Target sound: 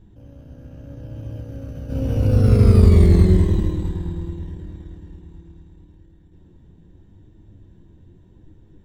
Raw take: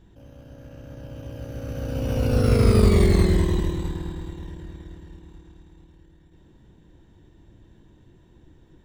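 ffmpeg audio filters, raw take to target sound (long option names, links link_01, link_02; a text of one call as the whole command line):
ffmpeg -i in.wav -filter_complex "[0:a]lowshelf=frequency=430:gain=11,asplit=3[link_01][link_02][link_03];[link_01]afade=type=out:start_time=1.4:duration=0.02[link_04];[link_02]acompressor=threshold=-23dB:ratio=5,afade=type=in:start_time=1.4:duration=0.02,afade=type=out:start_time=1.89:duration=0.02[link_05];[link_03]afade=type=in:start_time=1.89:duration=0.02[link_06];[link_04][link_05][link_06]amix=inputs=3:normalize=0,flanger=delay=9.5:depth=2.3:regen=54:speed=0.82:shape=sinusoidal,volume=-1dB" out.wav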